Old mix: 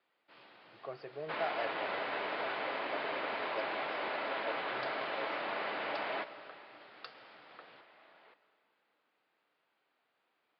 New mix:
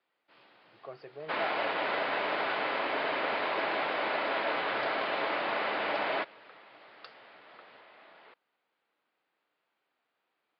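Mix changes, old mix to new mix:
second sound +8.0 dB; reverb: off

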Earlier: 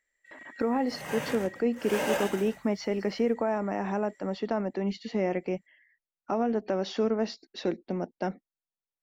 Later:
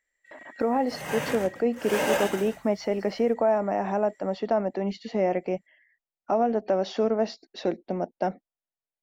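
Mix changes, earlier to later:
speech: add bell 660 Hz +8 dB 0.8 oct; second sound +4.0 dB

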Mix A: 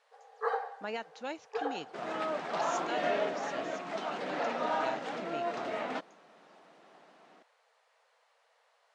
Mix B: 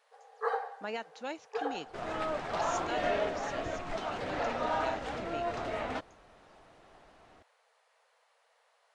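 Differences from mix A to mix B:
second sound: remove brick-wall FIR high-pass 150 Hz; master: remove LPF 8400 Hz 12 dB/oct

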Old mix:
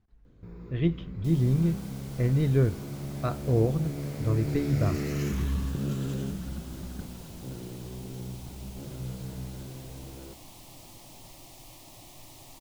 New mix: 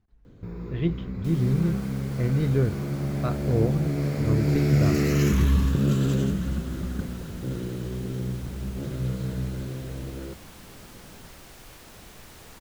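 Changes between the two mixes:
first sound +8.5 dB; second sound: remove fixed phaser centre 300 Hz, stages 8

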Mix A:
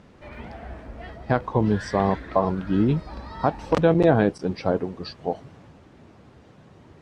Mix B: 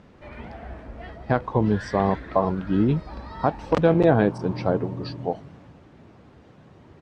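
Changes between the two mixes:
second sound: unmuted; reverb: on, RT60 1.7 s; master: add high shelf 6500 Hz -8 dB

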